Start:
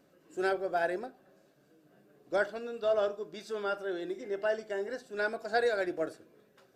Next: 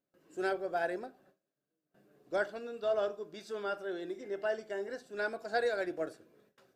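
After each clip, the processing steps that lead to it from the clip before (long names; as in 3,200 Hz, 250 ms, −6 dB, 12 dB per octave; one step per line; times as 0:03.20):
noise gate with hold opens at −53 dBFS
level −3 dB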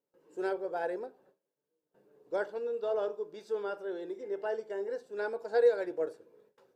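hollow resonant body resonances 470/890 Hz, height 15 dB, ringing for 30 ms
level −6 dB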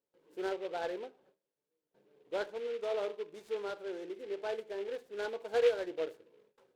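short delay modulated by noise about 2,200 Hz, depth 0.041 ms
level −3 dB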